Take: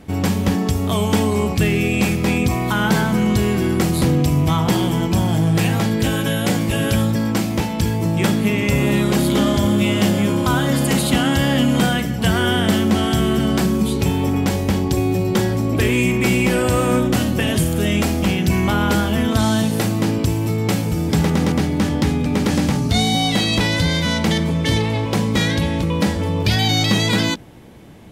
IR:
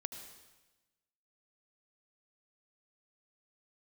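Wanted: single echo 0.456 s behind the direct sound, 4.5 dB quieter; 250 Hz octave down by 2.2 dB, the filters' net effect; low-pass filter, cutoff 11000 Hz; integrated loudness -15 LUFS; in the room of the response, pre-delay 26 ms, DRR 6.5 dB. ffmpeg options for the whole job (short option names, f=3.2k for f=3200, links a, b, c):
-filter_complex "[0:a]lowpass=11k,equalizer=f=250:t=o:g=-3,aecho=1:1:456:0.596,asplit=2[a][b];[1:a]atrim=start_sample=2205,adelay=26[c];[b][c]afir=irnorm=-1:irlink=0,volume=-5dB[d];[a][d]amix=inputs=2:normalize=0,volume=2dB"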